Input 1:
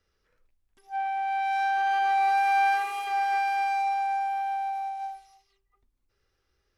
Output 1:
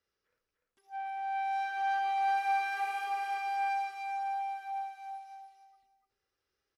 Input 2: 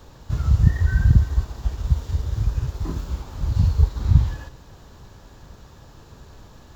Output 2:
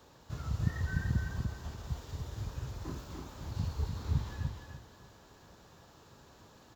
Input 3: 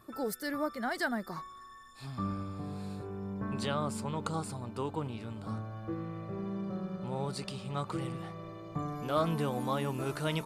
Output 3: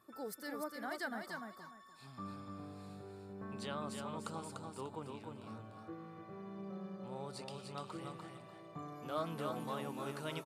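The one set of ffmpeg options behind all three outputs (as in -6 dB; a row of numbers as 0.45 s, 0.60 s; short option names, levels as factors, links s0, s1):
-filter_complex "[0:a]highpass=f=220:p=1,asplit=2[s0][s1];[s1]aecho=0:1:296|592|888:0.596|0.137|0.0315[s2];[s0][s2]amix=inputs=2:normalize=0,volume=0.376"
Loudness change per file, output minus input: -7.0 LU, -16.0 LU, -9.0 LU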